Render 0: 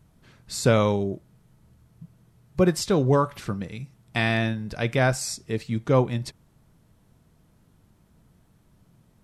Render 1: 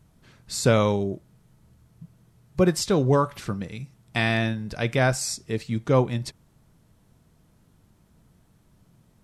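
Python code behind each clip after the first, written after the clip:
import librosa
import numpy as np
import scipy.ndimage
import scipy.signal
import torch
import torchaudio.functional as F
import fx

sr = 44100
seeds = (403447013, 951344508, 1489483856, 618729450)

y = fx.peak_eq(x, sr, hz=6700.0, db=2.0, octaves=1.6)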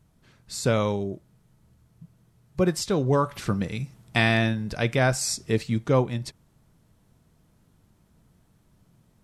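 y = fx.rider(x, sr, range_db=5, speed_s=0.5)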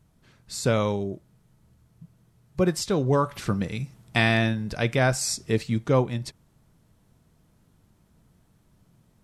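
y = x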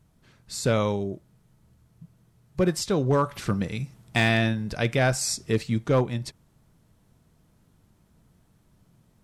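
y = np.clip(x, -10.0 ** (-14.0 / 20.0), 10.0 ** (-14.0 / 20.0))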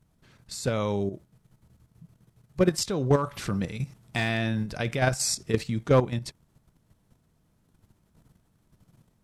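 y = fx.level_steps(x, sr, step_db=10)
y = y * 10.0 ** (3.0 / 20.0)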